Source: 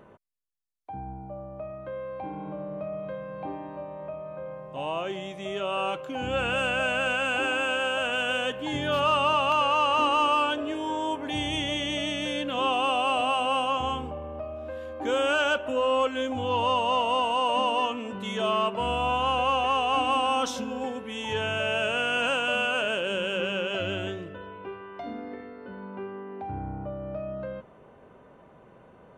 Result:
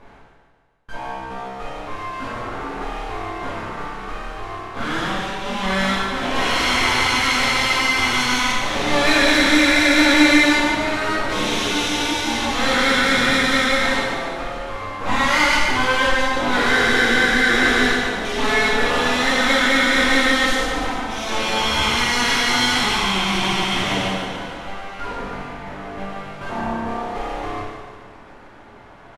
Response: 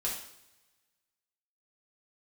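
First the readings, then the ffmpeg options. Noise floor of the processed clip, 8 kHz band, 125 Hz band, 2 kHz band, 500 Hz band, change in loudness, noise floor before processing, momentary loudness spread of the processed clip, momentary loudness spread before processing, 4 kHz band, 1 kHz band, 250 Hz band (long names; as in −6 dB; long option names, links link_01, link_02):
−43 dBFS, +17.0 dB, +7.5 dB, +12.5 dB, +4.0 dB, +9.0 dB, −53 dBFS, 17 LU, 15 LU, +10.5 dB, +4.0 dB, +12.5 dB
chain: -filter_complex "[0:a]highpass=48,aemphasis=mode=reproduction:type=50fm,aeval=exprs='abs(val(0))':channel_layout=same,aecho=1:1:145|290|435|580|725|870:0.398|0.215|0.116|0.0627|0.0339|0.0183[link_01];[1:a]atrim=start_sample=2205,asetrate=25137,aresample=44100[link_02];[link_01][link_02]afir=irnorm=-1:irlink=0,volume=3.5dB"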